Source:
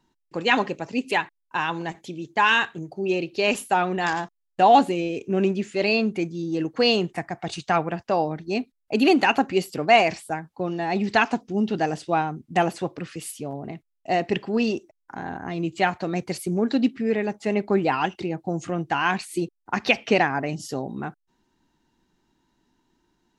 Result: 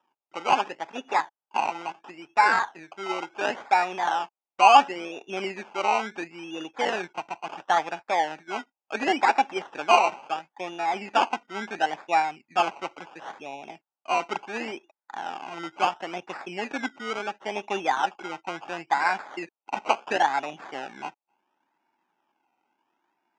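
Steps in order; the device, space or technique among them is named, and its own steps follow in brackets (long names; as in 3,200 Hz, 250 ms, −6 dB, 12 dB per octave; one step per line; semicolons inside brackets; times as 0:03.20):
circuit-bent sampling toy (sample-and-hold swept by an LFO 20×, swing 60% 0.72 Hz; loudspeaker in its box 420–5,800 Hz, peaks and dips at 460 Hz −4 dB, 840 Hz +10 dB, 1,500 Hz +4 dB, 2,600 Hz +6 dB, 4,200 Hz −10 dB)
level −4.5 dB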